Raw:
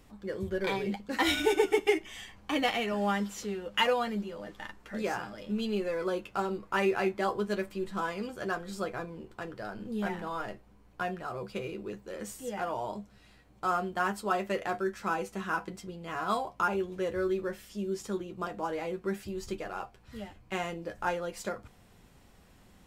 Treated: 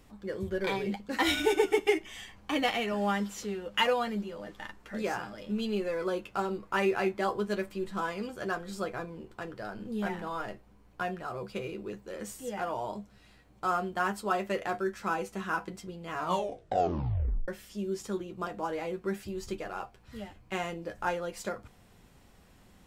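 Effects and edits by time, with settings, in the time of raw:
0:16.16: tape stop 1.32 s

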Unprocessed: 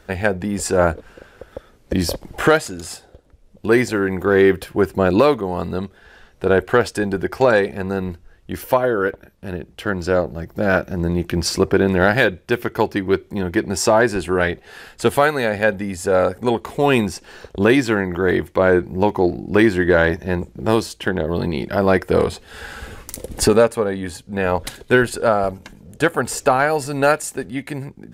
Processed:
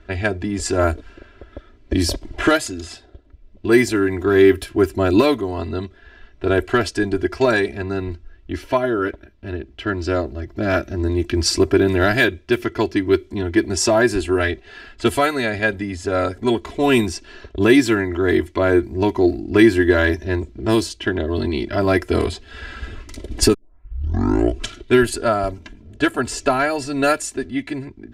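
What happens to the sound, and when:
0:23.54: tape start 1.40 s
whole clip: parametric band 820 Hz −8 dB 2.2 octaves; comb filter 3 ms, depth 98%; low-pass that shuts in the quiet parts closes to 2,800 Hz, open at −12.5 dBFS; level +1 dB

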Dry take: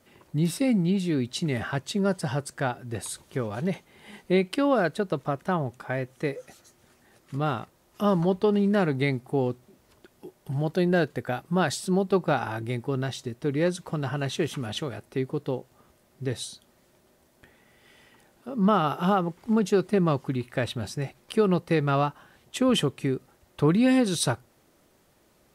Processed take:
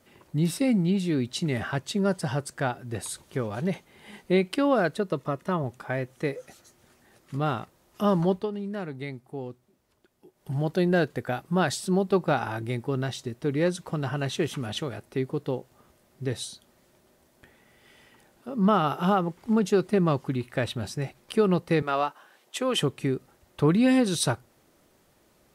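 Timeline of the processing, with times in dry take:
0:04.97–0:05.64: notch comb filter 780 Hz
0:08.31–0:10.51: duck −10.5 dB, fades 0.18 s
0:21.82–0:22.82: high-pass filter 410 Hz

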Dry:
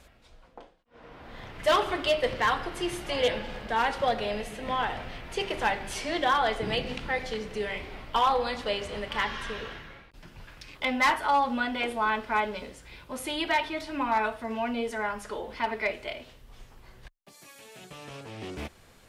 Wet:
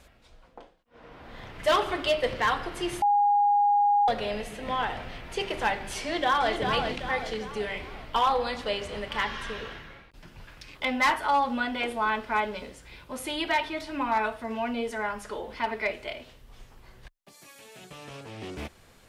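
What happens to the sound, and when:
0:03.02–0:04.08: beep over 819 Hz −18.5 dBFS
0:06.01–0:06.52: delay throw 390 ms, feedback 45%, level −5.5 dB

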